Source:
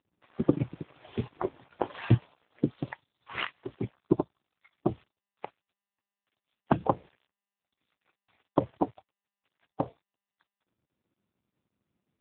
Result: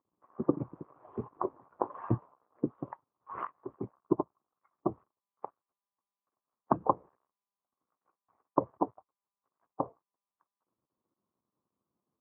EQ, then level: ladder low-pass 1200 Hz, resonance 70%; bell 390 Hz +8 dB 2.3 oct; 0.0 dB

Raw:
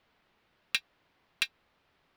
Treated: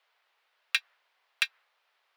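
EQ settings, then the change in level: Bessel high-pass 810 Hz, order 8; dynamic EQ 1600 Hz, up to +7 dB, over -49 dBFS, Q 0.92; 0.0 dB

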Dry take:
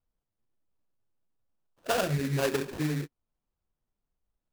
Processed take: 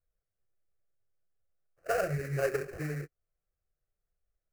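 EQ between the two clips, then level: high shelf 4400 Hz -7 dB; fixed phaser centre 940 Hz, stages 6; 0.0 dB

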